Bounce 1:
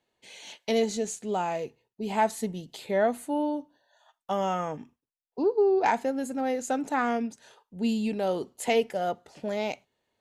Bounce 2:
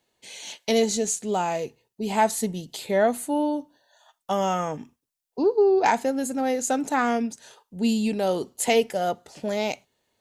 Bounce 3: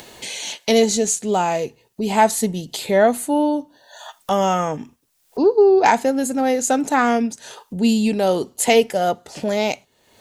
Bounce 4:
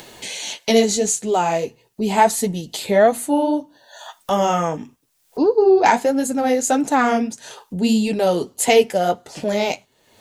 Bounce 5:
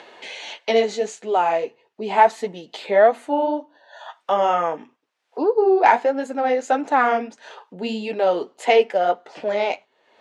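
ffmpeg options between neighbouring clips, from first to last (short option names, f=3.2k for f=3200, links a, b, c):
-af "bass=f=250:g=1,treble=f=4k:g=7,volume=3.5dB"
-af "acompressor=mode=upward:threshold=-29dB:ratio=2.5,volume=6dB"
-af "flanger=delay=5.8:depth=6.5:regen=-37:speed=1.6:shape=triangular,volume=4dB"
-af "highpass=450,lowpass=2.5k,volume=1dB"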